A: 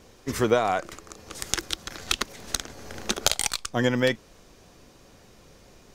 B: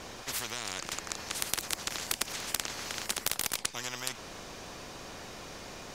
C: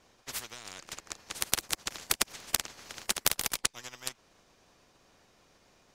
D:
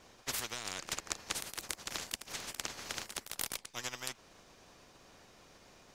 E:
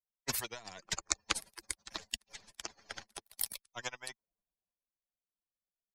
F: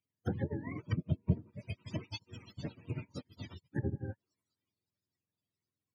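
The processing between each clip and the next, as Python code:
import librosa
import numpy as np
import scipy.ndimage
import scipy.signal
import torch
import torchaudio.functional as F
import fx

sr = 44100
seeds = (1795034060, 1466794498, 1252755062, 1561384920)

y1 = fx.high_shelf(x, sr, hz=8800.0, db=-7.5)
y1 = fx.spectral_comp(y1, sr, ratio=10.0)
y2 = fx.upward_expand(y1, sr, threshold_db=-46.0, expansion=2.5)
y2 = y2 * librosa.db_to_amplitude(5.5)
y3 = fx.over_compress(y2, sr, threshold_db=-38.0, ratio=-1.0)
y3 = y3 * librosa.db_to_amplitude(-1.0)
y4 = fx.bin_expand(y3, sr, power=3.0)
y4 = fx.band_widen(y4, sr, depth_pct=40)
y4 = y4 * librosa.db_to_amplitude(7.5)
y5 = fx.octave_mirror(y4, sr, pivot_hz=450.0)
y5 = fx.env_lowpass_down(y5, sr, base_hz=420.0, full_db=-36.0)
y5 = fx.weighting(y5, sr, curve='D')
y5 = y5 * librosa.db_to_amplitude(11.5)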